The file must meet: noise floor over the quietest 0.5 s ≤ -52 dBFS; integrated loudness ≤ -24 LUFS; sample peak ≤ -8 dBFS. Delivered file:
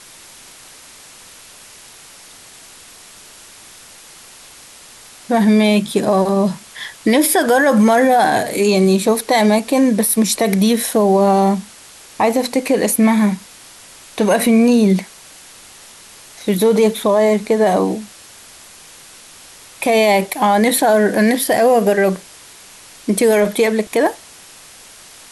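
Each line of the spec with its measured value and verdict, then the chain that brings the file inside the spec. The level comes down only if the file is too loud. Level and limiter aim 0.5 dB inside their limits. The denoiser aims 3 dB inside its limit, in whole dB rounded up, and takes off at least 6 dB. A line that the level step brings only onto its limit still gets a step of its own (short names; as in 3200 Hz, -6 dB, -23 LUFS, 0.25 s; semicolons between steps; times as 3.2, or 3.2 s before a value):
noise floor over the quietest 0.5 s -41 dBFS: fail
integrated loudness -14.5 LUFS: fail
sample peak -5.0 dBFS: fail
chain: denoiser 6 dB, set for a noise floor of -41 dBFS; gain -10 dB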